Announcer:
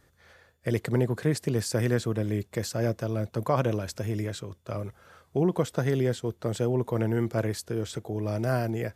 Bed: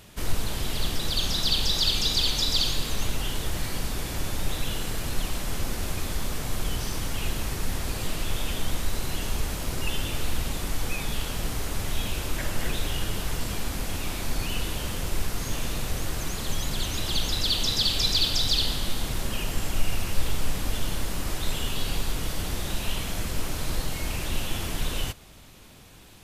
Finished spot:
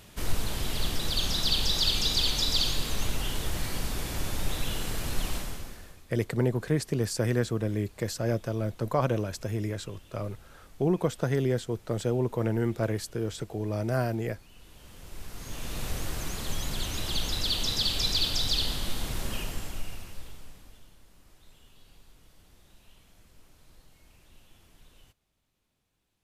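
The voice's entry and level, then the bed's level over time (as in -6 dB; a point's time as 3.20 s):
5.45 s, -1.0 dB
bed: 5.36 s -2 dB
6.06 s -25.5 dB
14.52 s -25.5 dB
15.85 s -3.5 dB
19.36 s -3.5 dB
20.96 s -28.5 dB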